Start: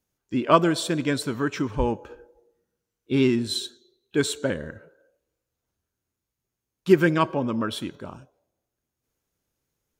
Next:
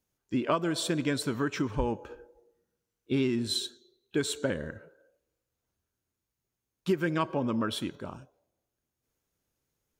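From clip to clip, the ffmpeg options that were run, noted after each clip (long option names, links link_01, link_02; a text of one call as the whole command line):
ffmpeg -i in.wav -af "acompressor=threshold=-22dB:ratio=6,volume=-2dB" out.wav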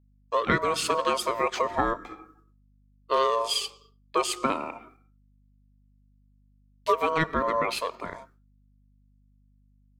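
ffmpeg -i in.wav -af "agate=range=-33dB:threshold=-55dB:ratio=3:detection=peak,aeval=exprs='val(0)*sin(2*PI*800*n/s)':channel_layout=same,aeval=exprs='val(0)+0.000447*(sin(2*PI*50*n/s)+sin(2*PI*2*50*n/s)/2+sin(2*PI*3*50*n/s)/3+sin(2*PI*4*50*n/s)/4+sin(2*PI*5*50*n/s)/5)':channel_layout=same,volume=6.5dB" out.wav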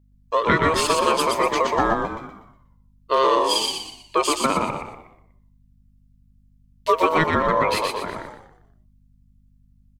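ffmpeg -i in.wav -filter_complex "[0:a]asplit=6[link_01][link_02][link_03][link_04][link_05][link_06];[link_02]adelay=121,afreqshift=-62,volume=-3.5dB[link_07];[link_03]adelay=242,afreqshift=-124,volume=-11.9dB[link_08];[link_04]adelay=363,afreqshift=-186,volume=-20.3dB[link_09];[link_05]adelay=484,afreqshift=-248,volume=-28.7dB[link_10];[link_06]adelay=605,afreqshift=-310,volume=-37.1dB[link_11];[link_01][link_07][link_08][link_09][link_10][link_11]amix=inputs=6:normalize=0,volume=4.5dB" out.wav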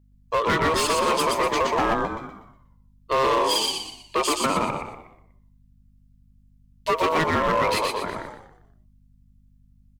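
ffmpeg -i in.wav -af "asoftclip=type=hard:threshold=-17dB" out.wav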